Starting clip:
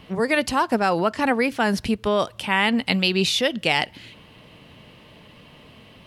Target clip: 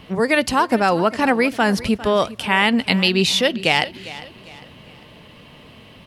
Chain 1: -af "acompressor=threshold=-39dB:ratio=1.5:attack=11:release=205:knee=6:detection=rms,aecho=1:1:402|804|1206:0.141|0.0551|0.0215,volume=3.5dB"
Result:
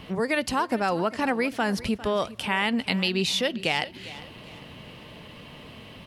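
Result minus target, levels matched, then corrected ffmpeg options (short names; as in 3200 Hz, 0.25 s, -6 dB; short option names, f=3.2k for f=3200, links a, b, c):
compressor: peak gain reduction +9 dB
-af "aecho=1:1:402|804|1206:0.141|0.0551|0.0215,volume=3.5dB"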